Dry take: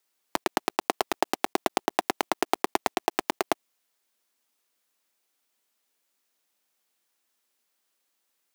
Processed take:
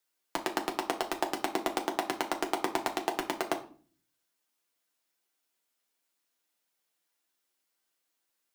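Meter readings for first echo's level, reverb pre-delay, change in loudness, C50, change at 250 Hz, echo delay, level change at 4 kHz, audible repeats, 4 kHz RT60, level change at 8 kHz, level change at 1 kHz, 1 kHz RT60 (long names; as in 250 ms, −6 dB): no echo audible, 6 ms, −4.0 dB, 13.0 dB, −3.0 dB, no echo audible, −4.0 dB, no echo audible, 0.35 s, −4.5 dB, −4.5 dB, 0.40 s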